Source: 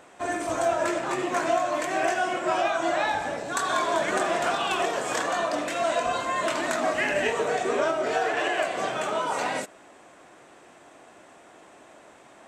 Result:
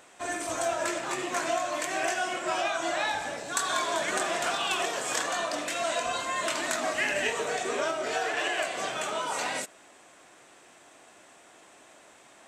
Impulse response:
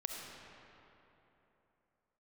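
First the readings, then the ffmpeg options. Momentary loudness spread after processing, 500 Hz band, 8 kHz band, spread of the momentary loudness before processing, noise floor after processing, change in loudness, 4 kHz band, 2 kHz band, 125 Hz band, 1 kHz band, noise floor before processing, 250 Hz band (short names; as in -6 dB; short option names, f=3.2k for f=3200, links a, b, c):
4 LU, -5.5 dB, +3.5 dB, 4 LU, -55 dBFS, -3.0 dB, +1.5 dB, -2.0 dB, -6.5 dB, -4.5 dB, -52 dBFS, -6.0 dB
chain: -af "highshelf=f=2k:g=10.5,volume=-6.5dB"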